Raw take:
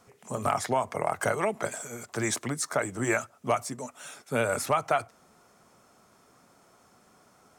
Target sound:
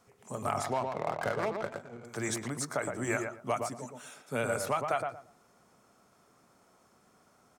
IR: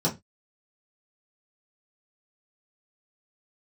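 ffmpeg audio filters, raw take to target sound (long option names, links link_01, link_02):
-filter_complex "[0:a]asplit=2[link_01][link_02];[link_02]adelay=116,lowpass=frequency=1300:poles=1,volume=-3.5dB,asplit=2[link_03][link_04];[link_04]adelay=116,lowpass=frequency=1300:poles=1,volume=0.23,asplit=2[link_05][link_06];[link_06]adelay=116,lowpass=frequency=1300:poles=1,volume=0.23[link_07];[link_01][link_03][link_05][link_07]amix=inputs=4:normalize=0,asettb=1/sr,asplit=3[link_08][link_09][link_10];[link_08]atrim=end=0.734[link_11];[link_09]atrim=start=0.73:end=2.05,asetpts=PTS-STARTPTS,afade=type=in:duration=0.004:curve=qsin,afade=type=out:start_time=1.316:duration=0.004:curve=qsin,adynamicsmooth=sensitivity=5.5:basefreq=780[link_12];[link_10]atrim=start=2.046[link_13];[link_11][link_12]acrossfade=duration=0.004:curve1=hsin:curve2=qsin[link_14];[link_14][link_13]acrossfade=duration=0.004:curve1=qsin:curve2=hsin,volume=-5.5dB"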